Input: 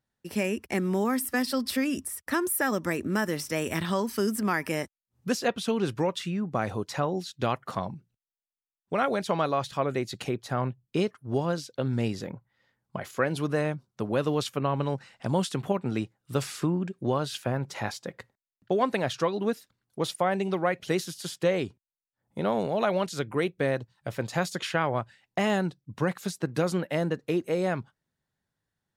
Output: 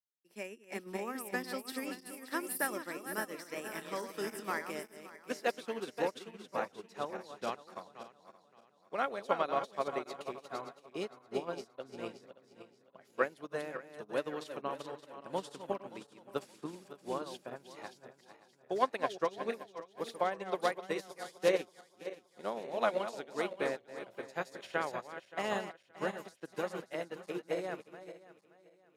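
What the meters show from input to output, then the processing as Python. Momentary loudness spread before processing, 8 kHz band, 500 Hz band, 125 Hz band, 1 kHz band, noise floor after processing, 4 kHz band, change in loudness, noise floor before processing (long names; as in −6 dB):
8 LU, −10.5 dB, −8.0 dB, −22.5 dB, −6.5 dB, −67 dBFS, −10.5 dB, −9.0 dB, below −85 dBFS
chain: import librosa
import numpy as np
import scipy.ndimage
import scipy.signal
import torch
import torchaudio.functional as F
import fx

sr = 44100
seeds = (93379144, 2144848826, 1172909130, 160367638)

y = fx.reverse_delay_fb(x, sr, ms=287, feedback_pct=72, wet_db=-5)
y = scipy.signal.sosfilt(scipy.signal.butter(2, 320.0, 'highpass', fs=sr, output='sos'), y)
y = fx.upward_expand(y, sr, threshold_db=-37.0, expansion=2.5)
y = y * librosa.db_to_amplitude(-1.5)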